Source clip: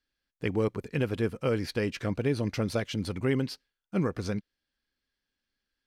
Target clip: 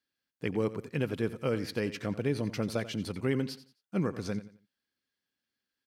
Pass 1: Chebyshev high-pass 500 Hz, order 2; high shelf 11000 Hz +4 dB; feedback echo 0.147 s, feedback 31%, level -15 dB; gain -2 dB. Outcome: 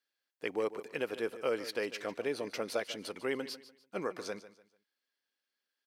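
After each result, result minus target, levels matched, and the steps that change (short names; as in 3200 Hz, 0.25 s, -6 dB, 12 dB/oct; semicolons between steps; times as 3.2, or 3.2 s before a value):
125 Hz band -17.0 dB; echo 59 ms late
change: Chebyshev high-pass 130 Hz, order 2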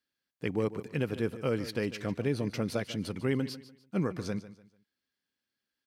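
echo 59 ms late
change: feedback echo 88 ms, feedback 31%, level -15 dB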